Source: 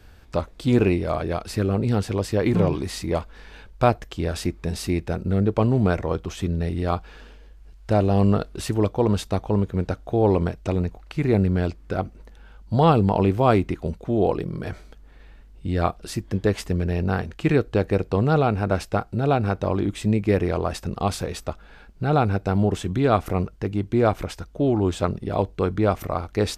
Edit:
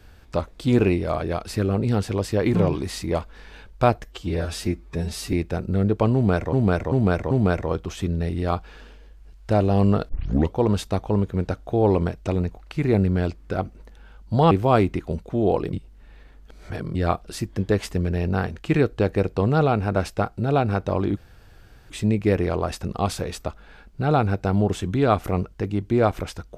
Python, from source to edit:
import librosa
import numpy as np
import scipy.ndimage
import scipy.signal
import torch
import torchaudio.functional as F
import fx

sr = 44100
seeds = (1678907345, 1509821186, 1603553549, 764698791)

y = fx.edit(x, sr, fx.stretch_span(start_s=4.04, length_s=0.86, factor=1.5),
    fx.repeat(start_s=5.71, length_s=0.39, count=4),
    fx.tape_start(start_s=8.49, length_s=0.44),
    fx.cut(start_s=12.91, length_s=0.35),
    fx.reverse_span(start_s=14.48, length_s=1.22),
    fx.insert_room_tone(at_s=19.92, length_s=0.73), tone=tone)